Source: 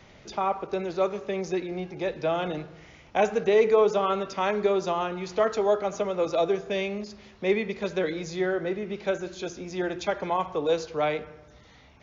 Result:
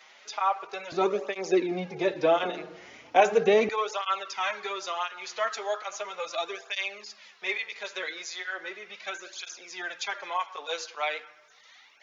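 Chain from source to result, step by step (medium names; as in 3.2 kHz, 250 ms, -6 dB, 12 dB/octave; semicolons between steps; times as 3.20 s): high-pass 1 kHz 12 dB/octave, from 0.92 s 240 Hz, from 3.69 s 1.3 kHz; cancelling through-zero flanger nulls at 0.37 Hz, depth 7.3 ms; trim +6.5 dB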